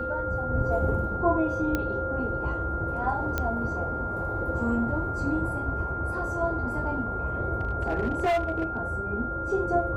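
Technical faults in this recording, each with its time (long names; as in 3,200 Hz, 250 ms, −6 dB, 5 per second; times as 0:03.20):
whistle 1,400 Hz −31 dBFS
0:01.75: click −13 dBFS
0:03.38: click −13 dBFS
0:07.61–0:08.77: clipping −21 dBFS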